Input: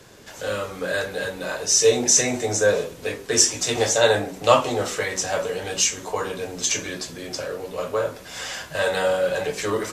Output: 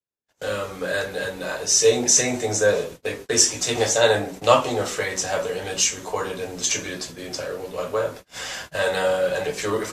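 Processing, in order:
noise gate −36 dBFS, range −51 dB

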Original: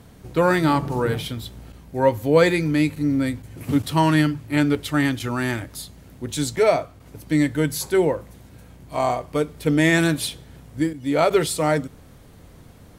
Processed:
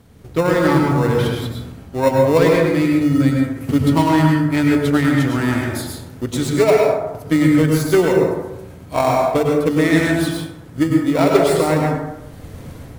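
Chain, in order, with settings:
phase distortion by the signal itself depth 0.075 ms
transient designer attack +5 dB, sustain +1 dB
automatic gain control
in parallel at −10.5 dB: decimation without filtering 28×
on the sum: mains-hum notches 50/100/150 Hz
convolution reverb RT60 0.95 s, pre-delay 93 ms, DRR −0.5 dB
level −4.5 dB

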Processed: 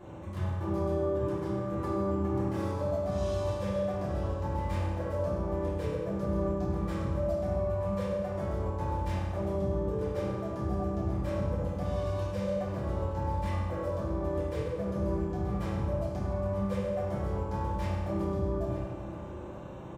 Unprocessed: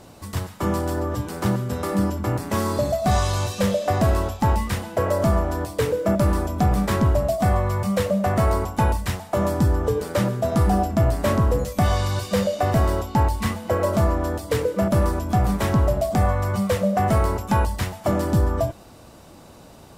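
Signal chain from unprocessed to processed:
adaptive Wiener filter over 9 samples
reversed playback
downward compressor 16 to 1, threshold −32 dBFS, peak gain reduction 18 dB
reversed playback
single-tap delay 924 ms −15 dB
convolution reverb RT60 1.7 s, pre-delay 3 ms, DRR −10 dB
level −8.5 dB

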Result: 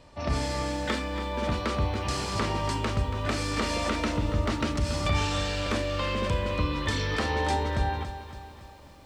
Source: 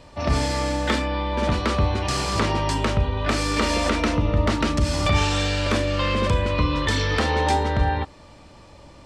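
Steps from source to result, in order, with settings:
feedback echo at a low word length 281 ms, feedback 55%, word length 8 bits, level −11.5 dB
level −6.5 dB

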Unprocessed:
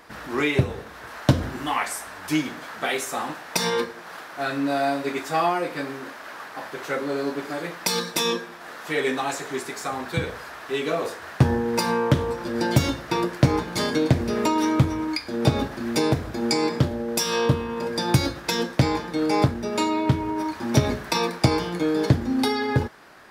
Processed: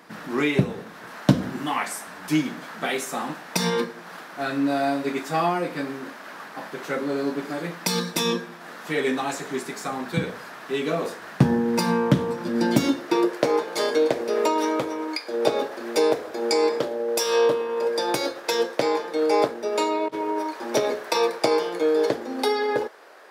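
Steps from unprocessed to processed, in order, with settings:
0:19.97–0:20.39: compressor whose output falls as the input rises −25 dBFS, ratio −0.5
high-pass filter sweep 180 Hz → 470 Hz, 0:12.51–0:13.48
level −1.5 dB

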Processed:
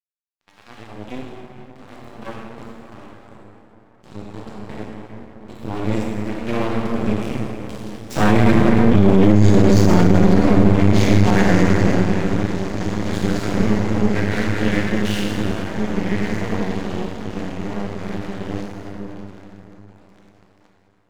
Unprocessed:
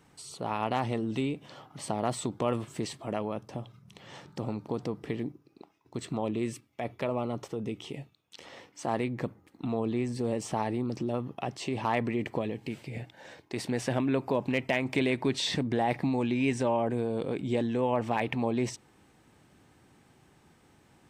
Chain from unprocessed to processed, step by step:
phase-vocoder pitch shift without resampling −2.5 semitones
source passing by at 0:09.02, 27 m/s, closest 20 metres
low-pass filter 8,200 Hz
parametric band 650 Hz −11.5 dB 1.2 octaves
on a send: feedback delay with all-pass diffusion 1,774 ms, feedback 65%, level −12 dB
on the sum: dead-zone distortion −53.5 dBFS
dense smooth reverb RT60 4 s, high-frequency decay 0.45×, DRR −1 dB
harmonic and percussive parts rebalanced percussive −13 dB
half-wave rectification
mains-hum notches 60/120 Hz
boost into a limiter +36 dB
level −1 dB

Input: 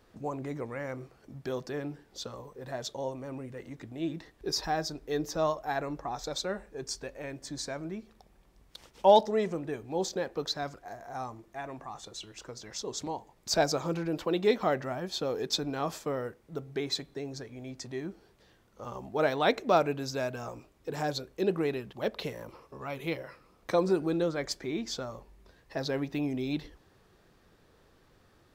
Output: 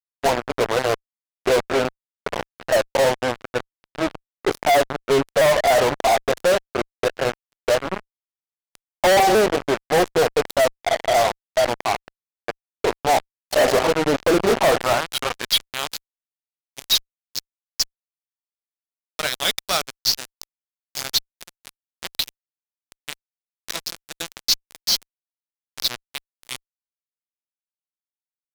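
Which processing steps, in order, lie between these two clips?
pitch shifter swept by a sawtooth −2.5 semitones, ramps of 492 ms
band-pass filter sweep 660 Hz → 5,100 Hz, 0:14.62–0:16.12
hum removal 385.9 Hz, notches 2
fuzz pedal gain 53 dB, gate −46 dBFS

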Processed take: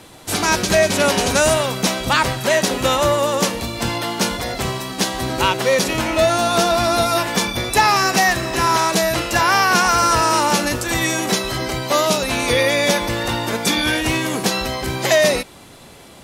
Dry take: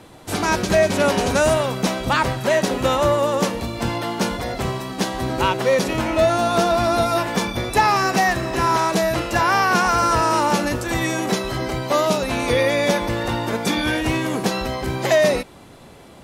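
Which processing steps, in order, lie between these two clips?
high-shelf EQ 2,100 Hz +8.5 dB

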